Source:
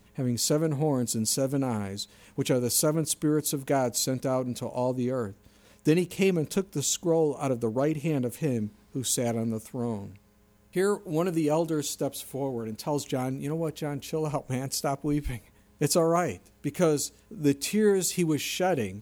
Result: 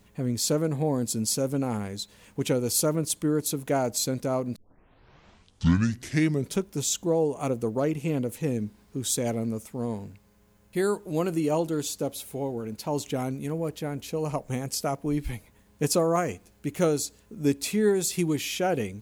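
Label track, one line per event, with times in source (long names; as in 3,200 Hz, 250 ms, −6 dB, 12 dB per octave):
4.560000	4.560000	tape start 2.05 s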